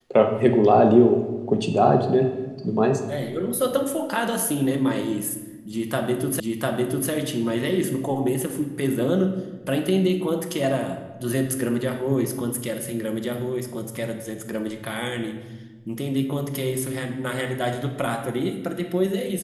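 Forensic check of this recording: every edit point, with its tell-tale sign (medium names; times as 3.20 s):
6.40 s: repeat of the last 0.7 s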